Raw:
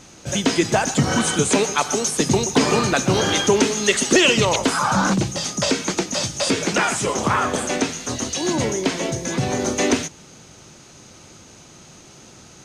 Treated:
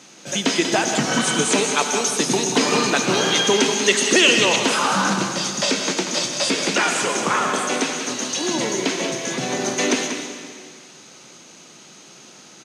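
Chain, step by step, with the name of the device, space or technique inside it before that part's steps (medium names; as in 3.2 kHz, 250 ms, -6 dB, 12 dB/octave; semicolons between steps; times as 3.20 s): PA in a hall (high-pass 170 Hz 24 dB/octave; peaking EQ 3.2 kHz +4.5 dB 2.2 oct; delay 188 ms -8.5 dB; reverberation RT60 2.0 s, pre-delay 80 ms, DRR 6.5 dB); trim -2.5 dB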